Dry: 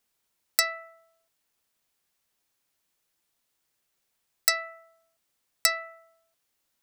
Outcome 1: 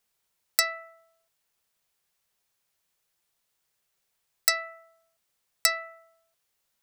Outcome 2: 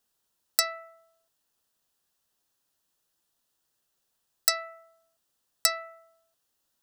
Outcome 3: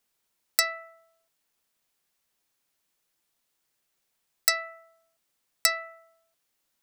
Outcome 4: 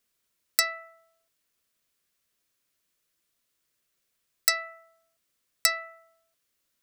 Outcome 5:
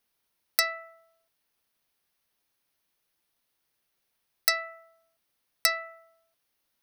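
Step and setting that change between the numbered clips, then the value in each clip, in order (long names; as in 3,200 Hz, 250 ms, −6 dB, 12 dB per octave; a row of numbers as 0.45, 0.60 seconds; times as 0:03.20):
parametric band, centre frequency: 280, 2,200, 81, 830, 7,400 Hertz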